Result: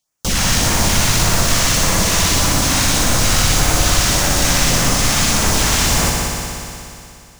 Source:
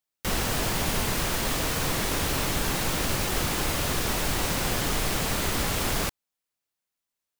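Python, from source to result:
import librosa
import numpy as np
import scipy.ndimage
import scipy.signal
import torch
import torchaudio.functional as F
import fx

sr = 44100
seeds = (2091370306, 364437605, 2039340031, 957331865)

p1 = fx.graphic_eq_15(x, sr, hz=(400, 6300, 16000), db=(-6, 7, -10))
p2 = fx.fold_sine(p1, sr, drive_db=6, ceiling_db=-14.5)
p3 = fx.filter_lfo_notch(p2, sr, shape='sine', hz=1.7, low_hz=340.0, high_hz=4200.0, q=0.73)
p4 = p3 + fx.echo_heads(p3, sr, ms=60, heads='all three', feedback_pct=73, wet_db=-9.0, dry=0)
y = F.gain(torch.from_numpy(p4), 2.5).numpy()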